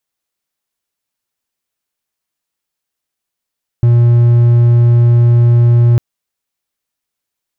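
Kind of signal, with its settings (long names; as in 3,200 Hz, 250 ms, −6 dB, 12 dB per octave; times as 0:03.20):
tone triangle 119 Hz −3 dBFS 2.15 s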